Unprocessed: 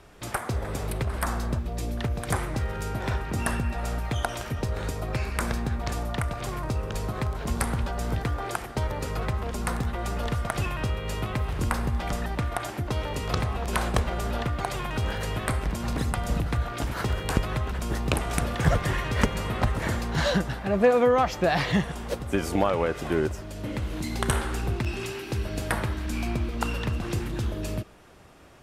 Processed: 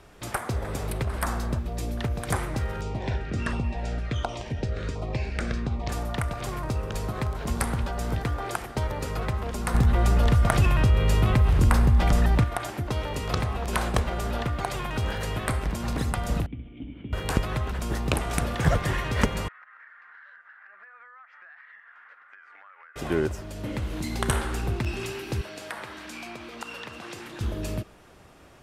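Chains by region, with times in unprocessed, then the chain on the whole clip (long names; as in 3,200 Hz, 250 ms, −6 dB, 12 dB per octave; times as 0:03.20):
0:02.81–0:05.89: Bessel low-pass filter 5,000 Hz, order 4 + auto-filter notch saw down 1.4 Hz 730–1,800 Hz
0:09.74–0:12.44: low-shelf EQ 170 Hz +9 dB + envelope flattener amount 50%
0:16.46–0:17.13: formant resonators in series i + flutter between parallel walls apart 11.6 metres, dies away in 0.4 s
0:19.48–0:22.96: flat-topped band-pass 1,600 Hz, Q 2.4 + downward compressor 12 to 1, threshold −46 dBFS
0:25.41–0:27.41: meter weighting curve A + downward compressor 2 to 1, threshold −37 dBFS
whole clip: no processing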